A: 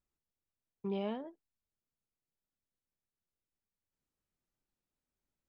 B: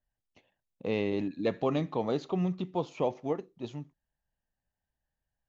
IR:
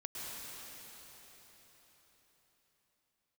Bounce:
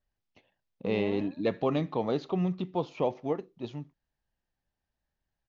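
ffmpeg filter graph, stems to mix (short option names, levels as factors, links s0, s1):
-filter_complex "[0:a]volume=0.75,asplit=2[s0][s1];[s1]volume=0.355[s2];[1:a]volume=1.12[s3];[s2]aecho=0:1:127:1[s4];[s0][s3][s4]amix=inputs=3:normalize=0,lowpass=f=5700:w=0.5412,lowpass=f=5700:w=1.3066"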